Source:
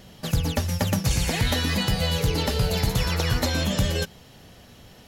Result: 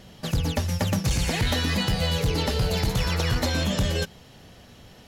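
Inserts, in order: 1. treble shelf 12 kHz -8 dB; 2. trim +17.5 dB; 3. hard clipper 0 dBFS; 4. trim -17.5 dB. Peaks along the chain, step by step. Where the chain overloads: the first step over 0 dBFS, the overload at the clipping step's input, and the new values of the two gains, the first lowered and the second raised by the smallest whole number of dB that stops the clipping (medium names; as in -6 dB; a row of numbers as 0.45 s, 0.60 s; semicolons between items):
-11.5 dBFS, +6.0 dBFS, 0.0 dBFS, -17.5 dBFS; step 2, 6.0 dB; step 2 +11.5 dB, step 4 -11.5 dB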